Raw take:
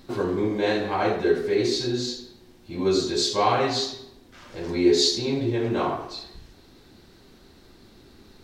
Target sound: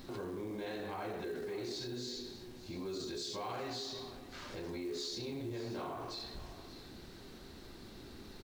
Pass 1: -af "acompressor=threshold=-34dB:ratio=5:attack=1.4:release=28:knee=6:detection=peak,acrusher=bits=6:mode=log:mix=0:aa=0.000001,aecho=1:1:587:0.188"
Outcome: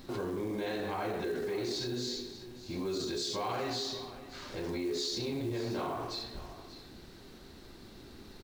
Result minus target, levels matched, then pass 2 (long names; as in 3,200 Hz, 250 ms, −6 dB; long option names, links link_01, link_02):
downward compressor: peak gain reduction −6 dB
-af "acompressor=threshold=-41.5dB:ratio=5:attack=1.4:release=28:knee=6:detection=peak,acrusher=bits=6:mode=log:mix=0:aa=0.000001,aecho=1:1:587:0.188"